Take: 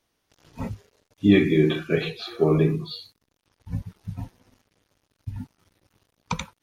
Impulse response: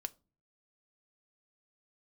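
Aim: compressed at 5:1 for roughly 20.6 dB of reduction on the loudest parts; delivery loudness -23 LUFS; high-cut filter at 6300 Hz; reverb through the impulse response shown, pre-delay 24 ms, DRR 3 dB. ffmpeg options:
-filter_complex "[0:a]lowpass=6.3k,acompressor=threshold=-35dB:ratio=5,asplit=2[a][b];[1:a]atrim=start_sample=2205,adelay=24[c];[b][c]afir=irnorm=-1:irlink=0,volume=-1dB[d];[a][d]amix=inputs=2:normalize=0,volume=16dB"

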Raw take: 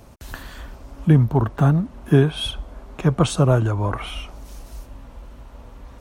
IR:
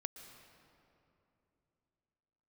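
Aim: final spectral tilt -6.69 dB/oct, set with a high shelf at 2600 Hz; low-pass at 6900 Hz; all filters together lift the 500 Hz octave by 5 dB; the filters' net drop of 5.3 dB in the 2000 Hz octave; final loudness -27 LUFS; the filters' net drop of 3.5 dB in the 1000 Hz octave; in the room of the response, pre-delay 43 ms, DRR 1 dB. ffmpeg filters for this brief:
-filter_complex "[0:a]lowpass=6.9k,equalizer=f=500:t=o:g=8,equalizer=f=1k:t=o:g=-7,equalizer=f=2k:t=o:g=-9,highshelf=f=2.6k:g=8,asplit=2[a][b];[1:a]atrim=start_sample=2205,adelay=43[c];[b][c]afir=irnorm=-1:irlink=0,volume=1.5dB[d];[a][d]amix=inputs=2:normalize=0,volume=-10.5dB"

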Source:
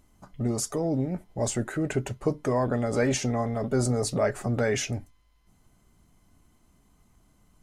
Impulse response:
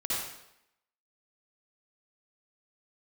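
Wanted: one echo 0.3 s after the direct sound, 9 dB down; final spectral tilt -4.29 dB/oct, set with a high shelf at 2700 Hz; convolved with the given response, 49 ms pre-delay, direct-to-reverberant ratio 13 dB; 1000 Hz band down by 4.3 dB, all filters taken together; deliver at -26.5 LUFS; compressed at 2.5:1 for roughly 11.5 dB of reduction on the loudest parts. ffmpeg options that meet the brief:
-filter_complex "[0:a]equalizer=f=1k:t=o:g=-7.5,highshelf=f=2.7k:g=9,acompressor=threshold=-38dB:ratio=2.5,aecho=1:1:300:0.355,asplit=2[a][b];[1:a]atrim=start_sample=2205,adelay=49[c];[b][c]afir=irnorm=-1:irlink=0,volume=-19.5dB[d];[a][d]amix=inputs=2:normalize=0,volume=10dB"

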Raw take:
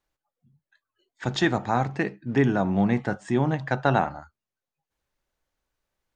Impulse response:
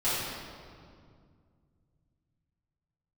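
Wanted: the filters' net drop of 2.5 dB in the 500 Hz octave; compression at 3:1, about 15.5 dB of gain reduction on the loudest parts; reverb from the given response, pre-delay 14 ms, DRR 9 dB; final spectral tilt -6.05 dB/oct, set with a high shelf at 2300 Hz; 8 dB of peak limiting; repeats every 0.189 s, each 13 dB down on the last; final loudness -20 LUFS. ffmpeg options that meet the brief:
-filter_complex "[0:a]equalizer=f=500:t=o:g=-3,highshelf=f=2.3k:g=-8.5,acompressor=threshold=-40dB:ratio=3,alimiter=level_in=6dB:limit=-24dB:level=0:latency=1,volume=-6dB,aecho=1:1:189|378|567:0.224|0.0493|0.0108,asplit=2[a][b];[1:a]atrim=start_sample=2205,adelay=14[c];[b][c]afir=irnorm=-1:irlink=0,volume=-20.5dB[d];[a][d]amix=inputs=2:normalize=0,volume=22dB"

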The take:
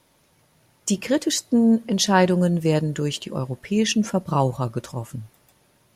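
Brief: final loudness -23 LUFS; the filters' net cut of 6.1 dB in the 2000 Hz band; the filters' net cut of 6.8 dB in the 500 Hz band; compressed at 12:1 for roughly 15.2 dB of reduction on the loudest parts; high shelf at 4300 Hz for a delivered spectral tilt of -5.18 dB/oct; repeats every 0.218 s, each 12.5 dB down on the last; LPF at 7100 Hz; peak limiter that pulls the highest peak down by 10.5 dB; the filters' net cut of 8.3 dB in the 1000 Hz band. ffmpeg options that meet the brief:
-af "lowpass=7.1k,equalizer=f=500:t=o:g=-6.5,equalizer=f=1k:t=o:g=-7,equalizer=f=2k:t=o:g=-6,highshelf=f=4.3k:g=3.5,acompressor=threshold=-31dB:ratio=12,alimiter=level_in=4.5dB:limit=-24dB:level=0:latency=1,volume=-4.5dB,aecho=1:1:218|436|654:0.237|0.0569|0.0137,volume=14.5dB"

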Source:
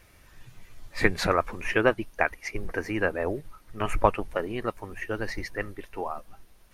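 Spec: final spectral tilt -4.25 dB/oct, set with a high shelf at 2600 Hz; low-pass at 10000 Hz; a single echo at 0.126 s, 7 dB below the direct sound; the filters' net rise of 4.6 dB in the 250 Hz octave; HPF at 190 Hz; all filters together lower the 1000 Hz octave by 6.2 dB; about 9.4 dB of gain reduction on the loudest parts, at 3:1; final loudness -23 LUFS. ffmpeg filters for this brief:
-af "highpass=190,lowpass=10k,equalizer=f=250:t=o:g=8.5,equalizer=f=1k:t=o:g=-8,highshelf=f=2.6k:g=-5,acompressor=threshold=-28dB:ratio=3,aecho=1:1:126:0.447,volume=11dB"

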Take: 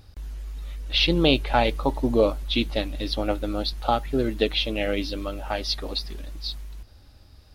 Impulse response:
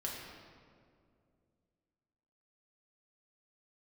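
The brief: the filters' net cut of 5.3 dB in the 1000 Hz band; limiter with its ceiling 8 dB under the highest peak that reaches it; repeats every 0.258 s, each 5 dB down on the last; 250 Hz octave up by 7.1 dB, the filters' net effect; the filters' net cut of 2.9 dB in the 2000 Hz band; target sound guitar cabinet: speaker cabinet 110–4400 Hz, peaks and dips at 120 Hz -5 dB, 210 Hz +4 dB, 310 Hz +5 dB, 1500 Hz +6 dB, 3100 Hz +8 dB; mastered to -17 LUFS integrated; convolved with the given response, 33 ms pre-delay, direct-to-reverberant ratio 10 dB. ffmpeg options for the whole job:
-filter_complex "[0:a]equalizer=f=250:t=o:g=5,equalizer=f=1k:t=o:g=-7,equalizer=f=2k:t=o:g=-8.5,alimiter=limit=-14dB:level=0:latency=1,aecho=1:1:258|516|774|1032|1290|1548|1806:0.562|0.315|0.176|0.0988|0.0553|0.031|0.0173,asplit=2[a][b];[1:a]atrim=start_sample=2205,adelay=33[c];[b][c]afir=irnorm=-1:irlink=0,volume=-11.5dB[d];[a][d]amix=inputs=2:normalize=0,highpass=110,equalizer=f=120:t=q:w=4:g=-5,equalizer=f=210:t=q:w=4:g=4,equalizer=f=310:t=q:w=4:g=5,equalizer=f=1.5k:t=q:w=4:g=6,equalizer=f=3.1k:t=q:w=4:g=8,lowpass=f=4.4k:w=0.5412,lowpass=f=4.4k:w=1.3066,volume=5.5dB"

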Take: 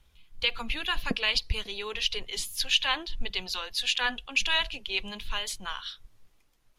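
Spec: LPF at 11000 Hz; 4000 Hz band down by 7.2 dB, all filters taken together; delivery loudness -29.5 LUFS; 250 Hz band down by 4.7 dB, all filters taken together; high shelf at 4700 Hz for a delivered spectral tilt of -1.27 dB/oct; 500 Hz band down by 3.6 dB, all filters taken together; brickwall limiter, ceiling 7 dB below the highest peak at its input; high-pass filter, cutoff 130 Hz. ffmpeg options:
-af "highpass=130,lowpass=11k,equalizer=f=250:t=o:g=-4.5,equalizer=f=500:t=o:g=-3,equalizer=f=4k:t=o:g=-8.5,highshelf=f=4.7k:g=-4.5,volume=7dB,alimiter=limit=-15.5dB:level=0:latency=1"

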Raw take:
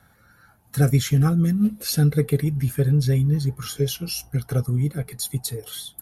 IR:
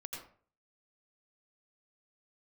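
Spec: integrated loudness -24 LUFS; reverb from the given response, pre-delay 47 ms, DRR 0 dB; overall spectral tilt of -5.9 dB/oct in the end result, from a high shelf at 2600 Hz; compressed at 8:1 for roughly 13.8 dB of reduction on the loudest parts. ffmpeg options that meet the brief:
-filter_complex "[0:a]highshelf=f=2.6k:g=-8.5,acompressor=threshold=-29dB:ratio=8,asplit=2[a][b];[1:a]atrim=start_sample=2205,adelay=47[c];[b][c]afir=irnorm=-1:irlink=0,volume=2dB[d];[a][d]amix=inputs=2:normalize=0,volume=7dB"

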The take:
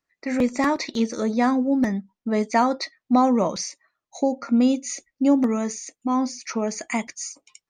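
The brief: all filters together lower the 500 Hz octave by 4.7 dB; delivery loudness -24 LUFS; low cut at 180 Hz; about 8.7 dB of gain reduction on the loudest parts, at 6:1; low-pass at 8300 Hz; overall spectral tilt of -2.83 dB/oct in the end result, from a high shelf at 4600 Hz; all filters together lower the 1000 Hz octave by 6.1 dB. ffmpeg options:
-af "highpass=180,lowpass=8.3k,equalizer=f=500:t=o:g=-3.5,equalizer=f=1k:t=o:g=-7,highshelf=f=4.6k:g=5.5,acompressor=threshold=-26dB:ratio=6,volume=7dB"

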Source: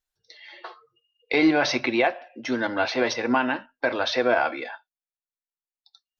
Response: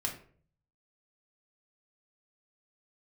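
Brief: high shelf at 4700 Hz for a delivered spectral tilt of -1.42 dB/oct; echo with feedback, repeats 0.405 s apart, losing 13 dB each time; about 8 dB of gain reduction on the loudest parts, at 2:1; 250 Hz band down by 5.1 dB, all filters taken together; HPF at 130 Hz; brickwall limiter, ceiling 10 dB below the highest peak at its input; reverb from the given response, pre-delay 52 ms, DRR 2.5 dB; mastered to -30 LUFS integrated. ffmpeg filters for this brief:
-filter_complex "[0:a]highpass=130,equalizer=f=250:t=o:g=-6.5,highshelf=f=4.7k:g=-8.5,acompressor=threshold=-33dB:ratio=2,alimiter=level_in=2dB:limit=-24dB:level=0:latency=1,volume=-2dB,aecho=1:1:405|810|1215:0.224|0.0493|0.0108,asplit=2[a][b];[1:a]atrim=start_sample=2205,adelay=52[c];[b][c]afir=irnorm=-1:irlink=0,volume=-5dB[d];[a][d]amix=inputs=2:normalize=0,volume=5dB"

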